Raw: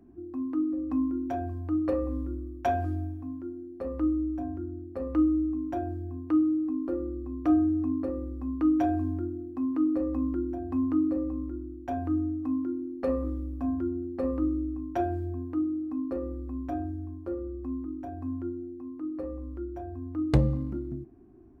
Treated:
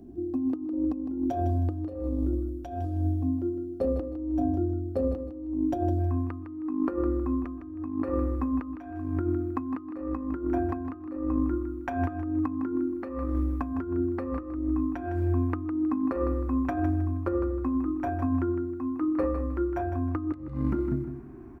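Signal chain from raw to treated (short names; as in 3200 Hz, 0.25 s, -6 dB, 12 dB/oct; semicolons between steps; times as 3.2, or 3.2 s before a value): band shelf 1500 Hz -10 dB, from 5.99 s +8 dB; negative-ratio compressor -33 dBFS, ratio -0.5; feedback echo 0.158 s, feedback 27%, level -9 dB; gain +5 dB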